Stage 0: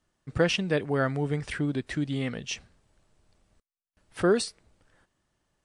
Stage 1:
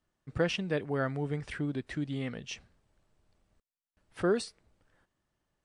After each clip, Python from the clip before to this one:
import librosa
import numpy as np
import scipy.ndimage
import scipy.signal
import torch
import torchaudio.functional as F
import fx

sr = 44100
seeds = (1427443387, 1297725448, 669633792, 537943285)

y = fx.high_shelf(x, sr, hz=4600.0, db=-5.5)
y = y * librosa.db_to_amplitude(-5.0)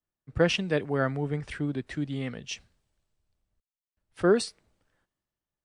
y = fx.band_widen(x, sr, depth_pct=40)
y = y * librosa.db_to_amplitude(3.5)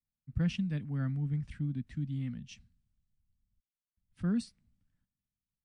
y = fx.curve_eq(x, sr, hz=(240.0, 380.0, 2300.0), db=(0, -26, -15))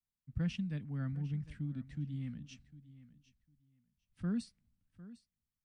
y = fx.echo_feedback(x, sr, ms=753, feedback_pct=17, wet_db=-17.0)
y = y * librosa.db_to_amplitude(-4.5)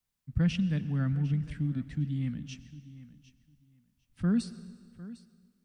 y = fx.rev_plate(x, sr, seeds[0], rt60_s=1.7, hf_ratio=0.9, predelay_ms=85, drr_db=15.5)
y = y * librosa.db_to_amplitude(8.5)